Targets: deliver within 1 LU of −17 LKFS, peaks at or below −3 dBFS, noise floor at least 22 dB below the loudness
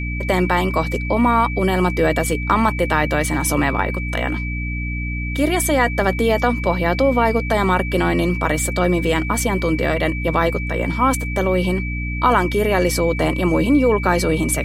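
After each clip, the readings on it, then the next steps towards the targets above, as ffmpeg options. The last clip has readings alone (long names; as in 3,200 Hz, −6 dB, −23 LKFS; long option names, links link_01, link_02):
mains hum 60 Hz; hum harmonics up to 300 Hz; level of the hum −22 dBFS; interfering tone 2,300 Hz; level of the tone −28 dBFS; integrated loudness −18.5 LKFS; sample peak −2.0 dBFS; target loudness −17.0 LKFS
→ -af "bandreject=frequency=60:width_type=h:width=6,bandreject=frequency=120:width_type=h:width=6,bandreject=frequency=180:width_type=h:width=6,bandreject=frequency=240:width_type=h:width=6,bandreject=frequency=300:width_type=h:width=6"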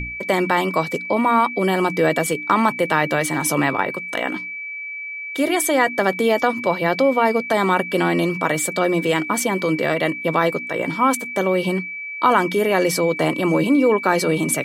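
mains hum none found; interfering tone 2,300 Hz; level of the tone −28 dBFS
→ -af "bandreject=frequency=2300:width=30"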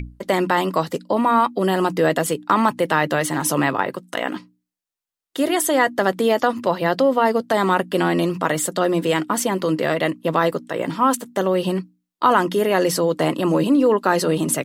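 interfering tone none found; integrated loudness −20.0 LKFS; sample peak −3.0 dBFS; target loudness −17.0 LKFS
→ -af "volume=3dB,alimiter=limit=-3dB:level=0:latency=1"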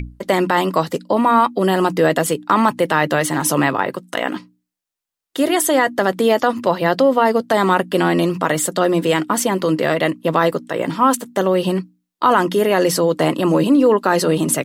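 integrated loudness −17.0 LKFS; sample peak −3.0 dBFS; background noise floor −83 dBFS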